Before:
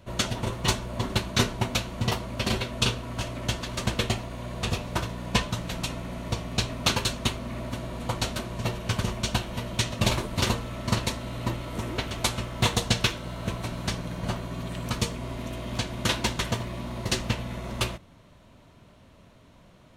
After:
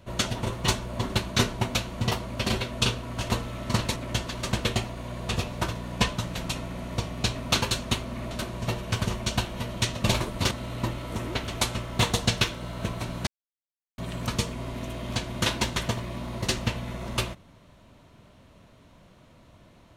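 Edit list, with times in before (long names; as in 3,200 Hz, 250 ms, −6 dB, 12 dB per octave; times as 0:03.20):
0:07.65–0:08.28: remove
0:10.48–0:11.14: move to 0:03.30
0:13.90–0:14.61: silence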